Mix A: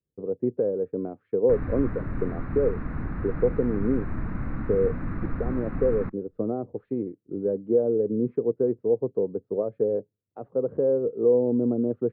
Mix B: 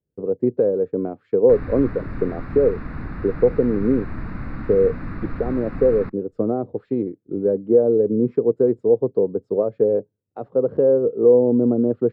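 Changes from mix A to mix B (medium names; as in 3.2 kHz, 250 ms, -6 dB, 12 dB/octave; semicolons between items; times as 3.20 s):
speech +5.5 dB; master: remove distance through air 450 m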